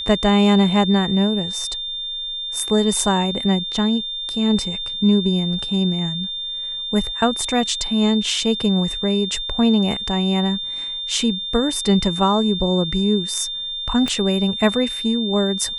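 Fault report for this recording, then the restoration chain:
tone 3600 Hz -25 dBFS
14.08 pop -11 dBFS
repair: de-click; notch 3600 Hz, Q 30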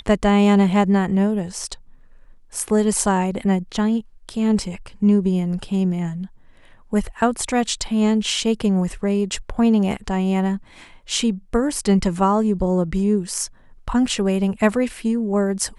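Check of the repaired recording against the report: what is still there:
14.08 pop

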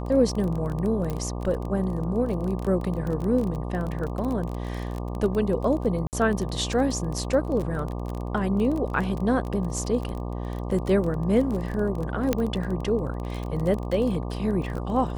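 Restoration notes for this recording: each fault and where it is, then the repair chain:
buzz 60 Hz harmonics 20 -31 dBFS
crackle 24/s -29 dBFS
1.1 pop -18 dBFS
6.07–6.13 gap 58 ms
12.33 pop -9 dBFS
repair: de-click; de-hum 60 Hz, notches 20; interpolate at 6.07, 58 ms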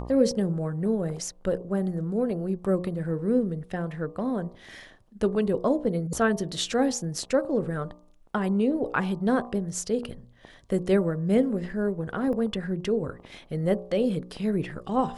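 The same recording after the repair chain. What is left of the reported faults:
12.33 pop

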